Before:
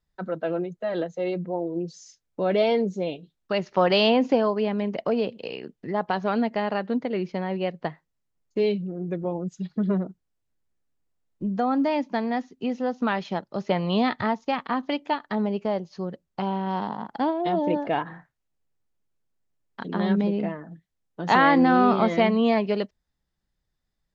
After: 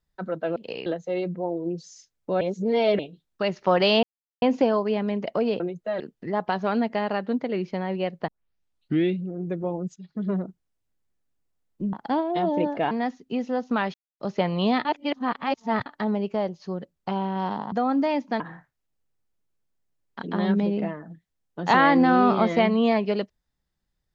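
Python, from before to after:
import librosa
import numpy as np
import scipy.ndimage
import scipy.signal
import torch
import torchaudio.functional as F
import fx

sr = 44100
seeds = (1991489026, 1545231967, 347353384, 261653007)

y = fx.edit(x, sr, fx.swap(start_s=0.56, length_s=0.4, other_s=5.31, other_length_s=0.3),
    fx.reverse_span(start_s=2.51, length_s=0.58),
    fx.insert_silence(at_s=4.13, length_s=0.39),
    fx.tape_start(start_s=7.89, length_s=0.92),
    fx.fade_in_from(start_s=9.57, length_s=0.5, floor_db=-15.0),
    fx.swap(start_s=11.54, length_s=0.68, other_s=17.03, other_length_s=0.98),
    fx.silence(start_s=13.25, length_s=0.26),
    fx.reverse_span(start_s=14.16, length_s=1.01), tone=tone)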